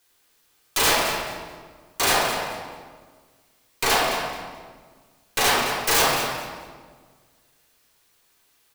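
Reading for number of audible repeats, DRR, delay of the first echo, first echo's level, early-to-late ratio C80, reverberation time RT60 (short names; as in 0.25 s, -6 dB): 1, -4.0 dB, 0.216 s, -9.5 dB, 2.0 dB, 1.6 s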